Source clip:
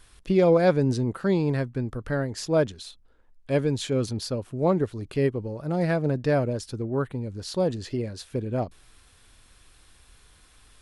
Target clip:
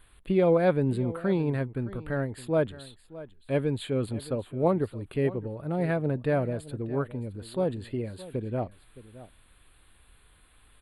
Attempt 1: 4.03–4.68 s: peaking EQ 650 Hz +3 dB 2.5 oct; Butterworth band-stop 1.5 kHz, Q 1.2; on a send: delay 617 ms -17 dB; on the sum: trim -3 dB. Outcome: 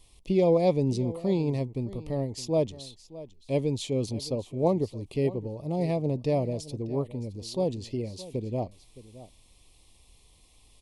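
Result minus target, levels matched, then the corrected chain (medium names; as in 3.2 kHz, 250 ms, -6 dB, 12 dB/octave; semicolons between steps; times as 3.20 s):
2 kHz band -10.0 dB
4.03–4.68 s: peaking EQ 650 Hz +3 dB 2.5 oct; Butterworth band-stop 5.8 kHz, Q 1.2; on a send: delay 617 ms -17 dB; on the sum: trim -3 dB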